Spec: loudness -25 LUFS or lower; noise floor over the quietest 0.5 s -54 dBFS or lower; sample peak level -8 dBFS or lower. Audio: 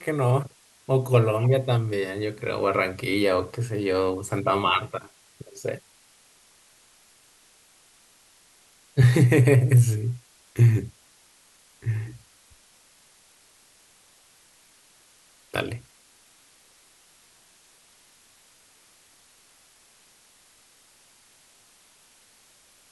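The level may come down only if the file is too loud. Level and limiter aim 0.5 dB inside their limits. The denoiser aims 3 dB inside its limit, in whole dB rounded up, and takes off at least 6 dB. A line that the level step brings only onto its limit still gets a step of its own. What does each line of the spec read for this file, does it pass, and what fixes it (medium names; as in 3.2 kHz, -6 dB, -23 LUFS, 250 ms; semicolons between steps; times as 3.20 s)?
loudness -23.5 LUFS: fail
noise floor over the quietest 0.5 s -58 dBFS: pass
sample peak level -5.5 dBFS: fail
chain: trim -2 dB; peak limiter -8.5 dBFS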